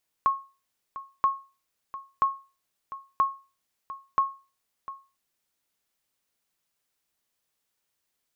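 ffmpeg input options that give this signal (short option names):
-f lavfi -i "aevalsrc='0.188*(sin(2*PI*1090*mod(t,0.98))*exp(-6.91*mod(t,0.98)/0.32)+0.168*sin(2*PI*1090*max(mod(t,0.98)-0.7,0))*exp(-6.91*max(mod(t,0.98)-0.7,0)/0.32))':d=4.9:s=44100"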